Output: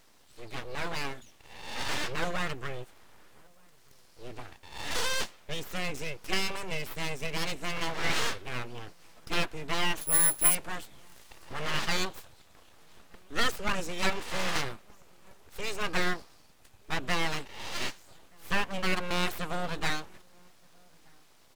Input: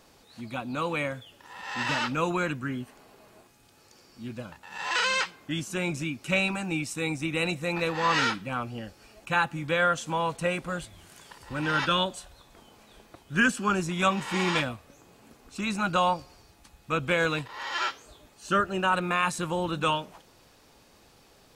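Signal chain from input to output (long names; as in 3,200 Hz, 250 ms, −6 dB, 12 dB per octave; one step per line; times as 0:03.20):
0:10.01–0:10.55: bad sample-rate conversion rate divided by 4×, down filtered, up zero stuff
full-wave rectification
slap from a distant wall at 210 metres, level −29 dB
level −1.5 dB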